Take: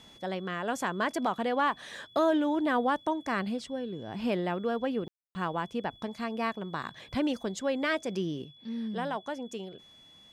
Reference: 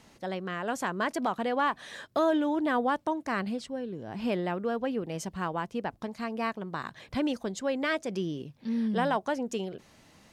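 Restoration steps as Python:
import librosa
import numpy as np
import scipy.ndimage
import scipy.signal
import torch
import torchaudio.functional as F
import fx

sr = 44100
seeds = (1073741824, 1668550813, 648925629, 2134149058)

y = fx.notch(x, sr, hz=3400.0, q=30.0)
y = fx.fix_ambience(y, sr, seeds[0], print_start_s=9.81, print_end_s=10.31, start_s=5.08, end_s=5.35)
y = fx.gain(y, sr, db=fx.steps((0.0, 0.0), (8.45, 6.0)))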